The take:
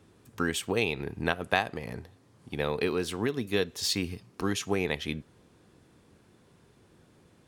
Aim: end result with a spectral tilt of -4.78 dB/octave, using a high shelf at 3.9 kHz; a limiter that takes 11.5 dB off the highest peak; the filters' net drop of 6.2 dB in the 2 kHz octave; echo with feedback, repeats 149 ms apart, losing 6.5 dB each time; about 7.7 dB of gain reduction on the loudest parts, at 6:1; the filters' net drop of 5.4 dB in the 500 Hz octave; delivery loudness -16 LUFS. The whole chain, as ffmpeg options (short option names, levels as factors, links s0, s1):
-af "equalizer=f=500:t=o:g=-6.5,equalizer=f=2000:t=o:g=-5.5,highshelf=f=3900:g=-9,acompressor=threshold=0.02:ratio=6,alimiter=level_in=2.11:limit=0.0631:level=0:latency=1,volume=0.473,aecho=1:1:149|298|447|596|745|894:0.473|0.222|0.105|0.0491|0.0231|0.0109,volume=21.1"